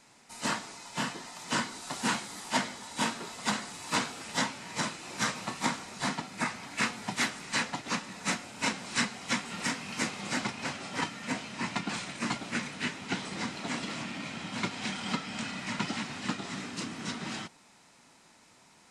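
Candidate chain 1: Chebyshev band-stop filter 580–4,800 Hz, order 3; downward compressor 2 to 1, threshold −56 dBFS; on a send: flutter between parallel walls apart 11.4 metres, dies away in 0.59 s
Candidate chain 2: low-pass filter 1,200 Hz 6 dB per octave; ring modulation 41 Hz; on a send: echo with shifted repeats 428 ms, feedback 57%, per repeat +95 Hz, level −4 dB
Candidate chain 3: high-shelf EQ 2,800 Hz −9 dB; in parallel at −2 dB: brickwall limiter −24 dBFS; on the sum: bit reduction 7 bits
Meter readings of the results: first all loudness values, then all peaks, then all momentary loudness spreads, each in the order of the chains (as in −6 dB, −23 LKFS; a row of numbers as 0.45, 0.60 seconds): −49.0, −38.5, −31.5 LKFS; −31.5, −17.0, −13.0 dBFS; 3, 4, 4 LU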